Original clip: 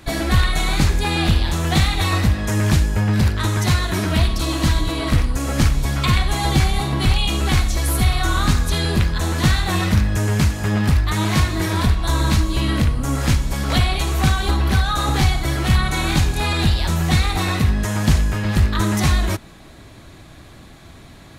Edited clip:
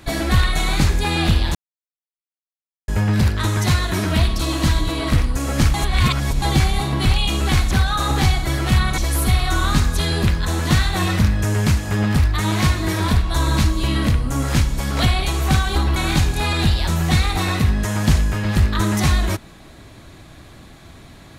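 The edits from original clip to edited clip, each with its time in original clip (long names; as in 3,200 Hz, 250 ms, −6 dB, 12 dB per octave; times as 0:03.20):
0:01.55–0:02.88: silence
0:05.74–0:06.42: reverse
0:14.69–0:15.96: move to 0:07.71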